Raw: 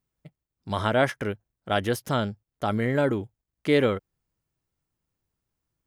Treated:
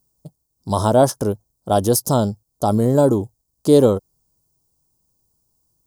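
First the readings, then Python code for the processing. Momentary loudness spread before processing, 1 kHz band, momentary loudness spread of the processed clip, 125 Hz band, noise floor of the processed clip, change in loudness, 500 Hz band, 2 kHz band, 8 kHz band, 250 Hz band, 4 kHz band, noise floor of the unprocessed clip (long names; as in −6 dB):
11 LU, +7.5 dB, 11 LU, +9.0 dB, −73 dBFS, +8.5 dB, +9.0 dB, −9.5 dB, +18.5 dB, +9.0 dB, +2.0 dB, below −85 dBFS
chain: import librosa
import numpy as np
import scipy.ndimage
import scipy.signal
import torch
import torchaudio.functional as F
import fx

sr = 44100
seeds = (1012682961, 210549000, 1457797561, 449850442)

y = fx.curve_eq(x, sr, hz=(1000.0, 2100.0, 4800.0, 8100.0), db=(0, -29, 5, 10))
y = F.gain(torch.from_numpy(y), 9.0).numpy()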